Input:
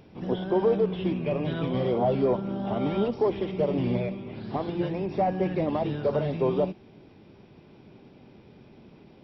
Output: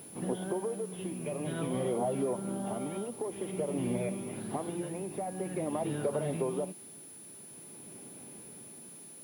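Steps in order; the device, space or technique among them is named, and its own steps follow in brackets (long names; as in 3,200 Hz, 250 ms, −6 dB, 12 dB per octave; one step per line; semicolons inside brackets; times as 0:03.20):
medium wave at night (band-pass filter 140–3,500 Hz; downward compressor, threshold −28 dBFS, peak gain reduction 9.5 dB; amplitude tremolo 0.49 Hz, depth 49%; steady tone 10,000 Hz −48 dBFS; white noise bed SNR 25 dB)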